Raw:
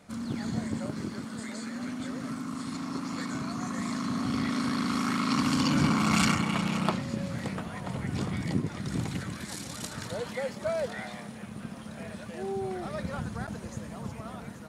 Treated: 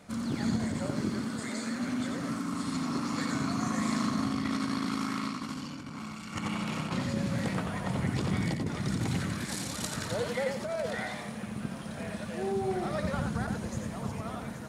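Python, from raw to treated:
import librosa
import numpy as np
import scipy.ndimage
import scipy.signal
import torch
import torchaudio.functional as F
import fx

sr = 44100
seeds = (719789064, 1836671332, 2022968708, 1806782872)

y = fx.over_compress(x, sr, threshold_db=-31.0, ratio=-0.5)
y = y + 10.0 ** (-5.5 / 20.0) * np.pad(y, (int(89 * sr / 1000.0), 0))[:len(y)]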